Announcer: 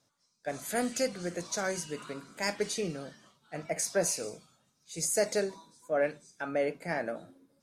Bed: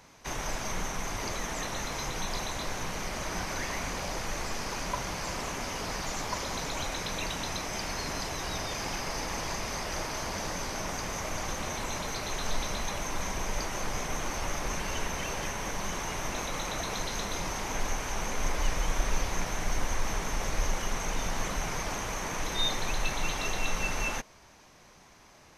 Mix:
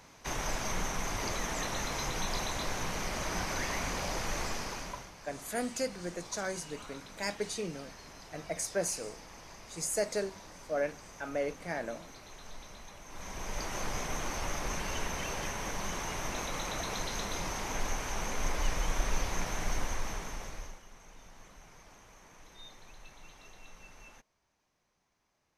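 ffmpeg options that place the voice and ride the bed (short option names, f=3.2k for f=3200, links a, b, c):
-filter_complex "[0:a]adelay=4800,volume=-3.5dB[a];[1:a]volume=13.5dB,afade=t=out:st=4.43:d=0.68:silence=0.158489,afade=t=in:st=13.06:d=0.71:silence=0.199526,afade=t=out:st=19.7:d=1.11:silence=0.1[b];[a][b]amix=inputs=2:normalize=0"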